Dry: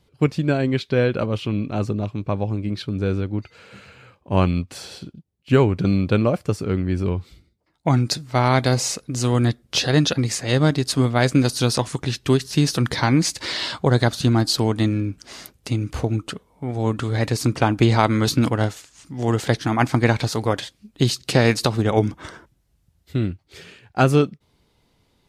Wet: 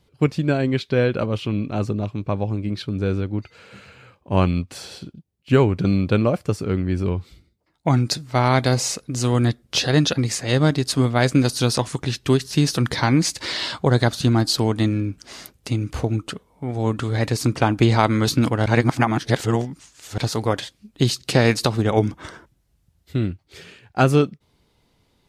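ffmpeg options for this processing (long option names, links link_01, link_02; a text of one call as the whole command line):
ffmpeg -i in.wav -filter_complex "[0:a]asplit=3[link_01][link_02][link_03];[link_01]atrim=end=18.662[link_04];[link_02]atrim=start=18.658:end=20.182,asetpts=PTS-STARTPTS,areverse[link_05];[link_03]atrim=start=20.178[link_06];[link_04][link_05]acrossfade=duration=0.004:curve1=hsin:curve2=hsin[link_07];[link_07][link_06]acrossfade=duration=0.004:curve1=hsin:curve2=hsin" out.wav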